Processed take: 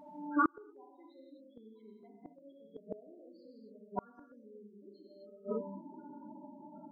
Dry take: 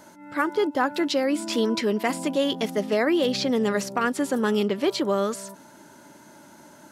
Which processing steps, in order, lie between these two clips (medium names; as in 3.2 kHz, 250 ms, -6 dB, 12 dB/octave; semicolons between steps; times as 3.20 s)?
steep low-pass 6.1 kHz 96 dB/octave; upward compressor, threshold -45 dBFS; loudest bins only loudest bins 4; gated-style reverb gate 290 ms flat, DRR -3 dB; inverted gate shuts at -17 dBFS, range -35 dB